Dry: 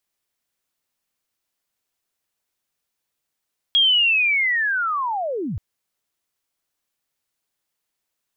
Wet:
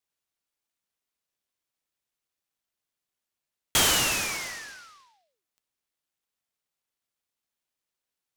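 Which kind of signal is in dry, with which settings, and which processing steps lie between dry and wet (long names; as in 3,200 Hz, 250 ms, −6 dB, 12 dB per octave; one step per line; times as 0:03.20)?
glide linear 3,300 Hz → 71 Hz −12.5 dBFS → −24 dBFS 1.83 s
four-pole ladder high-pass 2,600 Hz, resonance 30%
short delay modulated by noise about 3,500 Hz, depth 0.072 ms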